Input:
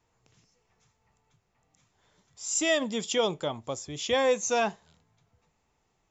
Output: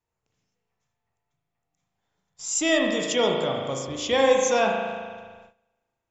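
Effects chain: spring tank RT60 1.7 s, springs 37 ms, chirp 55 ms, DRR 0.5 dB; gate -52 dBFS, range -16 dB; trim +2.5 dB

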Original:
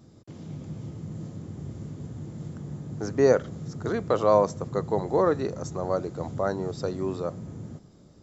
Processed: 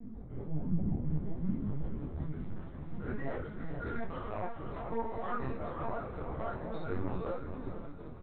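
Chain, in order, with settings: low-pass 1.6 kHz 12 dB/octave; tilt shelf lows +3.5 dB, about 1.1 kHz, from 1.02 s lows -4 dB, from 2.15 s lows -10 dB; comb 4.3 ms, depth 76%; dynamic bell 510 Hz, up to -7 dB, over -41 dBFS, Q 5.2; compression 5:1, threshold -34 dBFS, peak gain reduction 13.5 dB; saturation -29.5 dBFS, distortion -17 dB; tremolo 5.5 Hz, depth 51%; flange 1.3 Hz, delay 0.4 ms, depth 2 ms, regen -1%; echo that smears into a reverb 470 ms, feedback 46%, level -7 dB; reverberation RT60 0.45 s, pre-delay 3 ms, DRR -9.5 dB; LPC vocoder at 8 kHz pitch kept; detune thickener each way 20 cents

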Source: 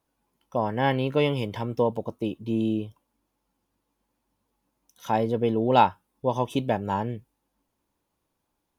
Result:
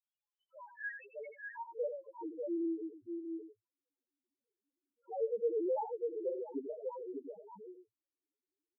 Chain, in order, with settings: reverb removal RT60 1.2 s; band-pass sweep 3.3 kHz -> 400 Hz, 0.30–2.52 s; on a send: multi-tap echo 87/596/693 ms -8/-5/-12.5 dB; on the sum: loudest bins only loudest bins 1; trim +2 dB

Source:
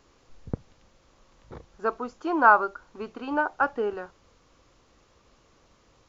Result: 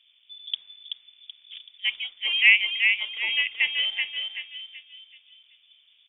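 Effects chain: feedback delay 380 ms, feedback 41%, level -5 dB; level-controlled noise filter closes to 840 Hz, open at -21 dBFS; frequency inversion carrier 3.5 kHz

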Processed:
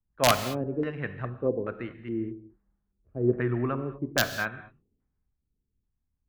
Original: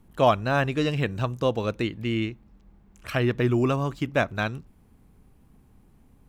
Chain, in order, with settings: LFO low-pass square 1.2 Hz 410–1700 Hz; integer overflow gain 7.5 dB; gated-style reverb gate 250 ms flat, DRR 8.5 dB; three bands expanded up and down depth 70%; trim -8 dB

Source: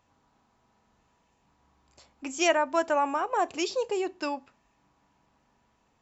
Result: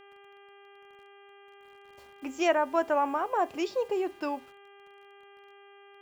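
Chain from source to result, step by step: low-pass 1.7 kHz 6 dB/octave; bit crusher 10-bit; mains buzz 400 Hz, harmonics 8, -54 dBFS -4 dB/octave

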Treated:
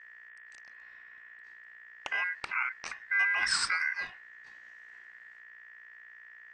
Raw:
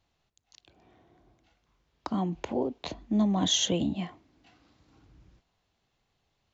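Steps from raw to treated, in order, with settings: mains buzz 60 Hz, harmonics 29, -49 dBFS -8 dB/octave; ring modulator 1.8 kHz

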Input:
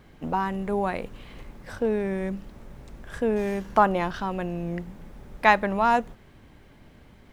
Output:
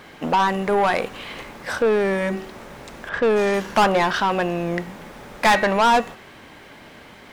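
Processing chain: de-hum 379.1 Hz, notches 31; 3.09–3.54 s: level-controlled noise filter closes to 1.9 kHz, open at -19.5 dBFS; overdrive pedal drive 26 dB, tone 7.9 kHz, clips at -4 dBFS; trim -4 dB

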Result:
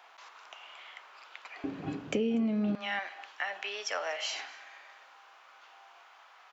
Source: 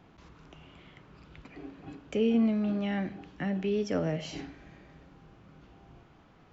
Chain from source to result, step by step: high-pass 740 Hz 24 dB/octave, from 1.64 s 93 Hz, from 2.75 s 810 Hz; compression 5:1, threshold -37 dBFS, peak gain reduction 13.5 dB; delay 241 ms -21 dB; trim +8.5 dB

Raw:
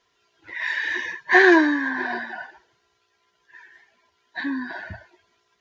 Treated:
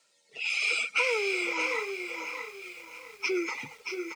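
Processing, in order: high-pass 130 Hz 24 dB/octave; treble shelf 3.3 kHz +12 dB; compression 5:1, threshold -23 dBFS, peak gain reduction 14 dB; rotary cabinet horn 0.7 Hz, later 6.3 Hz, at 3.43 s; delay 845 ms -6.5 dB; speed mistake 33 rpm record played at 45 rpm; bit-crushed delay 659 ms, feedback 55%, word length 8-bit, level -12 dB

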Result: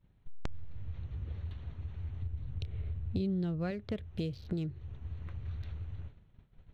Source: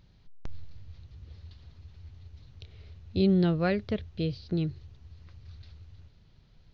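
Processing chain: local Wiener filter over 9 samples; expander -48 dBFS; 2.22–3.71 s: bass shelf 230 Hz +9.5 dB; compression 5:1, threshold -44 dBFS, peak gain reduction 24.5 dB; trim +9.5 dB

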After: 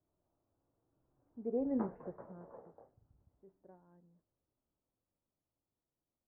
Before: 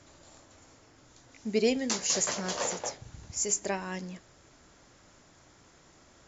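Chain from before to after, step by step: Doppler pass-by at 1.79 s, 20 m/s, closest 1.7 m; Bessel low-pass 740 Hz, order 8; trim +1 dB

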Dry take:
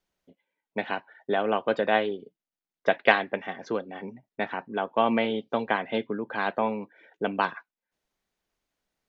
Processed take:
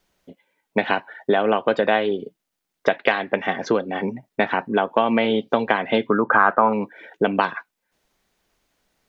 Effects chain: compression 5:1, threshold -28 dBFS, peak gain reduction 14 dB; 6.10–6.73 s: resonant low-pass 1.3 kHz, resonance Q 5.7; loudness maximiser +14 dB; trim -1 dB

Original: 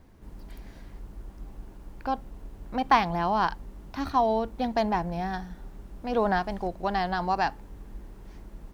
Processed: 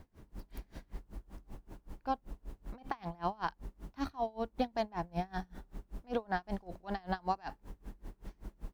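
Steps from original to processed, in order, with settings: compression 6:1, threshold -29 dBFS, peak gain reduction 14 dB; logarithmic tremolo 5.2 Hz, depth 29 dB; trim +2 dB

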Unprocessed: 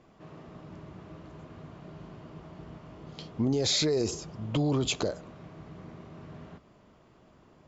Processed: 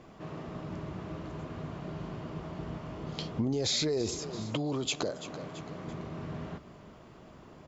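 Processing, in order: feedback delay 335 ms, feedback 39%, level -19.5 dB; compression 3:1, threshold -37 dBFS, peak gain reduction 10.5 dB; 4.19–5.87 s: high-pass 200 Hz 6 dB/octave; trim +6.5 dB

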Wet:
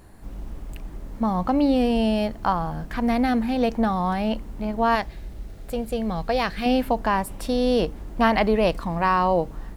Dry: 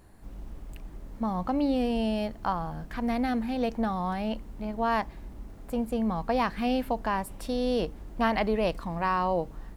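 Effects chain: 4.95–6.66 s: fifteen-band graphic EQ 250 Hz -8 dB, 1 kHz -8 dB, 4 kHz +4 dB; trim +6.5 dB

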